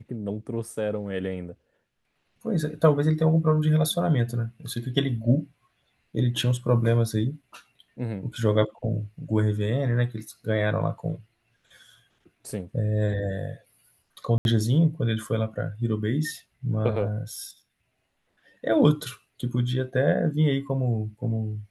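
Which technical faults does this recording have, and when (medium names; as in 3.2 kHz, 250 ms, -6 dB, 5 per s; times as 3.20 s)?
14.38–14.45 s: dropout 71 ms
17.36 s: dropout 2.8 ms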